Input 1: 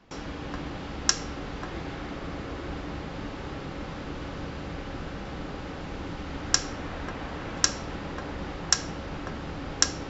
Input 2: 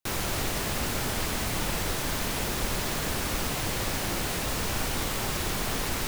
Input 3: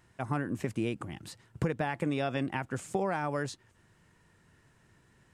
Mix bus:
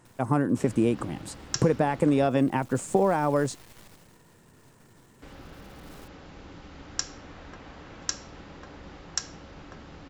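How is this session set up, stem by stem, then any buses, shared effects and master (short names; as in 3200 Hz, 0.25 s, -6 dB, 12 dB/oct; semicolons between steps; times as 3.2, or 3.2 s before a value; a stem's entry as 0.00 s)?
-10.0 dB, 0.45 s, muted 2.28–5.22, no send, high shelf 6000 Hz +6 dB
2.13 s -19.5 dB -> 2.74 s -7 dB -> 3.81 s -7 dB -> 4.24 s -19 dB, 0.00 s, no send, half-wave rectifier; auto duck -11 dB, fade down 0.20 s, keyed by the third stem
-1.5 dB, 0.00 s, no send, graphic EQ 125/250/500/1000/8000 Hz +6/+9/+9/+7/+11 dB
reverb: off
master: dry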